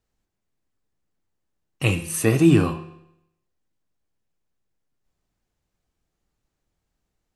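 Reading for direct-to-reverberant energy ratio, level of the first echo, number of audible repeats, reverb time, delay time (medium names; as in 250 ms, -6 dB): 8.5 dB, no echo, no echo, 0.80 s, no echo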